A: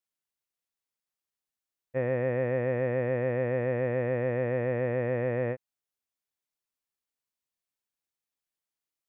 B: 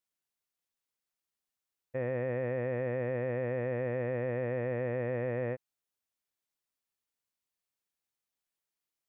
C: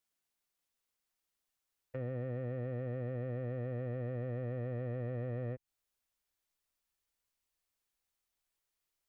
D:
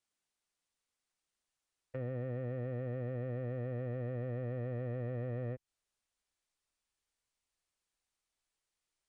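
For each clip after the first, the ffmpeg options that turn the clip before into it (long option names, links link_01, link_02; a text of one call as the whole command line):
ffmpeg -i in.wav -af "alimiter=level_in=0.5dB:limit=-24dB:level=0:latency=1:release=48,volume=-0.5dB" out.wav
ffmpeg -i in.wav -filter_complex "[0:a]asubboost=boost=4:cutoff=72,acrossover=split=310[link_01][link_02];[link_02]acompressor=threshold=-45dB:ratio=8[link_03];[link_01][link_03]amix=inputs=2:normalize=0,asoftclip=type=tanh:threshold=-33.5dB,volume=2.5dB" out.wav
ffmpeg -i in.wav -af "aresample=22050,aresample=44100" out.wav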